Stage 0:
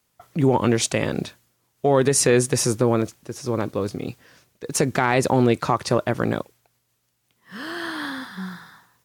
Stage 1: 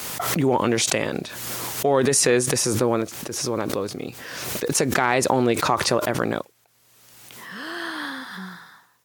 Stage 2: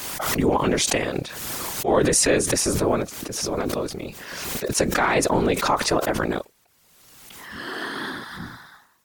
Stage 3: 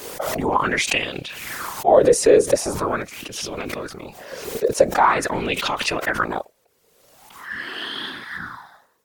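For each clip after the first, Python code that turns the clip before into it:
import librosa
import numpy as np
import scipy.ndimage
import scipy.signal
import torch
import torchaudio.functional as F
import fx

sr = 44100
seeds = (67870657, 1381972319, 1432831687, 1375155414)

y1 = fx.low_shelf(x, sr, hz=180.0, db=-11.0)
y1 = fx.pre_swell(y1, sr, db_per_s=33.0)
y2 = fx.whisperise(y1, sr, seeds[0])
y2 = fx.attack_slew(y2, sr, db_per_s=220.0)
y3 = fx.bell_lfo(y2, sr, hz=0.44, low_hz=440.0, high_hz=3100.0, db=17)
y3 = F.gain(torch.from_numpy(y3), -5.0).numpy()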